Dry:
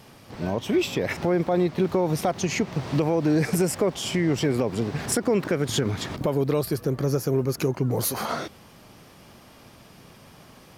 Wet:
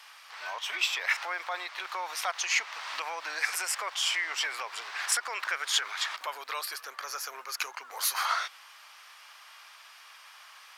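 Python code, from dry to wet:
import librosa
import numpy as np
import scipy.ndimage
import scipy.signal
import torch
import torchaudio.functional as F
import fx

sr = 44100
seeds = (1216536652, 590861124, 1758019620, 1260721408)

y = scipy.signal.sosfilt(scipy.signal.butter(4, 1100.0, 'highpass', fs=sr, output='sos'), x)
y = fx.high_shelf(y, sr, hz=7600.0, db=-10.5)
y = y * librosa.db_to_amplitude(5.0)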